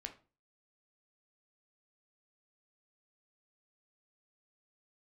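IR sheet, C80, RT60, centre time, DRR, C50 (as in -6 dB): 19.0 dB, 0.35 s, 10 ms, 4.5 dB, 13.0 dB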